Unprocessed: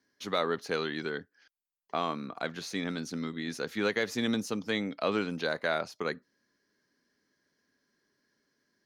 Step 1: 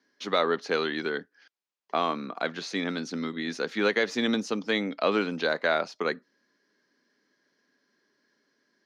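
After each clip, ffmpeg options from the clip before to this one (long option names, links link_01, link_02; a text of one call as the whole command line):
ffmpeg -i in.wav -filter_complex "[0:a]acrossover=split=170 6700:gain=0.0631 1 0.0794[link_01][link_02][link_03];[link_01][link_02][link_03]amix=inputs=3:normalize=0,volume=5dB" out.wav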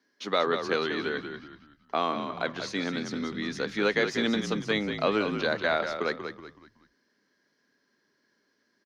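ffmpeg -i in.wav -filter_complex "[0:a]asplit=5[link_01][link_02][link_03][link_04][link_05];[link_02]adelay=187,afreqshift=-49,volume=-8dB[link_06];[link_03]adelay=374,afreqshift=-98,volume=-16.9dB[link_07];[link_04]adelay=561,afreqshift=-147,volume=-25.7dB[link_08];[link_05]adelay=748,afreqshift=-196,volume=-34.6dB[link_09];[link_01][link_06][link_07][link_08][link_09]amix=inputs=5:normalize=0,volume=-1dB" out.wav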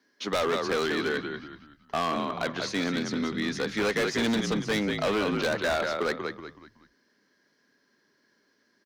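ffmpeg -i in.wav -af "asoftclip=type=hard:threshold=-26dB,volume=3.5dB" out.wav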